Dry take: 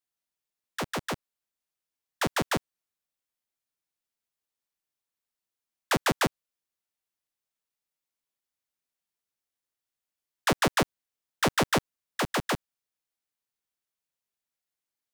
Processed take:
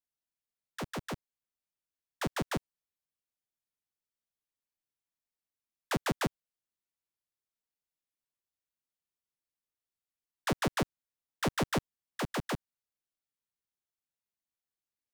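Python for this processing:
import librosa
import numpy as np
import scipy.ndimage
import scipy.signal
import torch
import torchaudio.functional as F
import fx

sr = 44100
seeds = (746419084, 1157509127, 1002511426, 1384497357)

y = fx.low_shelf(x, sr, hz=330.0, db=7.0)
y = y * 10.0 ** (-8.5 / 20.0)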